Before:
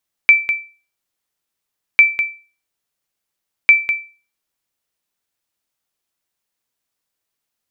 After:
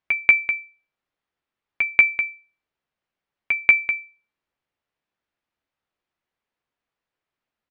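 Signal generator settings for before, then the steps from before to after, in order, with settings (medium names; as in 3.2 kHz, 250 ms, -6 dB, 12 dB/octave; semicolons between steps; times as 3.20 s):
sonar ping 2.33 kHz, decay 0.35 s, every 1.70 s, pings 3, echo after 0.20 s, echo -10 dB -1 dBFS
low-pass 2.5 kHz 12 dB/octave; doubling 14 ms -11 dB; reverse echo 186 ms -8.5 dB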